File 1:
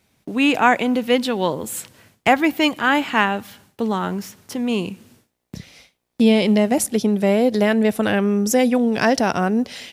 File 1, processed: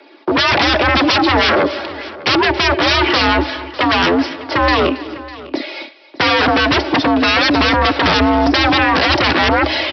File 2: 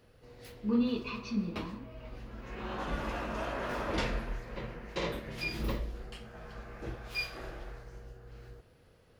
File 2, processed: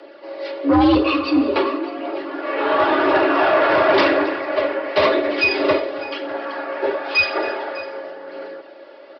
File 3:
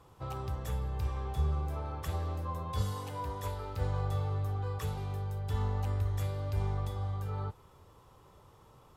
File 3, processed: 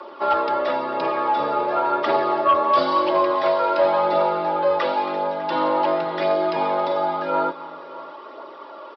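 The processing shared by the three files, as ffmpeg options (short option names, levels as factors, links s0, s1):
-filter_complex "[0:a]acrossover=split=540|1400[s0][s1][s2];[s0]acompressor=threshold=0.112:ratio=4[s3];[s1]acompressor=threshold=0.0355:ratio=4[s4];[s2]acompressor=threshold=0.0224:ratio=4[s5];[s3][s4][s5]amix=inputs=3:normalize=0,highpass=f=250:w=0.5412,highpass=f=250:w=1.3066,highshelf=f=2500:g=-9.5,aecho=1:1:3.7:0.67,aphaser=in_gain=1:out_gain=1:delay=2.5:decay=0.29:speed=0.95:type=triangular,aresample=11025,aeval=exprs='0.398*sin(PI/2*10*val(0)/0.398)':c=same,aresample=44100,aecho=1:1:274|601:0.126|0.119,afreqshift=69,volume=0.794"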